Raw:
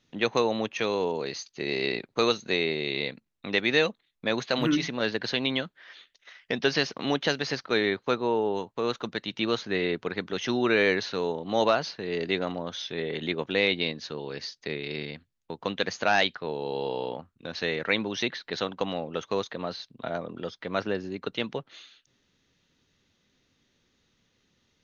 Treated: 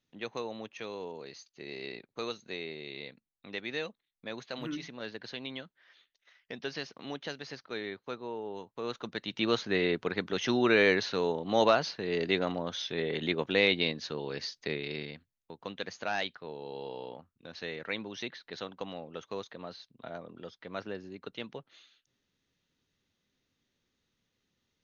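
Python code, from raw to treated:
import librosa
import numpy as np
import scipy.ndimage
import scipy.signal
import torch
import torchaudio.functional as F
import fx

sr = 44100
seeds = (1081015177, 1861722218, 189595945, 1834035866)

y = fx.gain(x, sr, db=fx.line((8.41, -13.0), (9.53, -1.0), (14.69, -1.0), (15.54, -10.0)))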